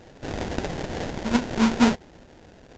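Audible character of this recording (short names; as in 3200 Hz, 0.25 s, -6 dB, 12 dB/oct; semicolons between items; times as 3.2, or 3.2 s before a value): aliases and images of a low sample rate 1200 Hz, jitter 20%; µ-law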